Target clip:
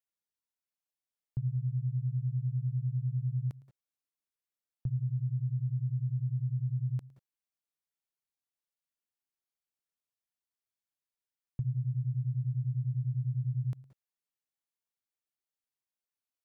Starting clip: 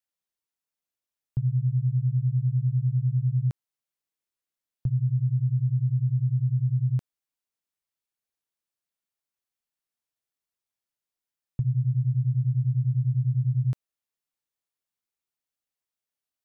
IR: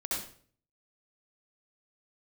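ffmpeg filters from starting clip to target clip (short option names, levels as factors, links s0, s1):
-filter_complex "[0:a]asplit=2[s0][s1];[1:a]atrim=start_sample=2205,atrim=end_sample=3969,adelay=110[s2];[s1][s2]afir=irnorm=-1:irlink=0,volume=0.133[s3];[s0][s3]amix=inputs=2:normalize=0,volume=0.447"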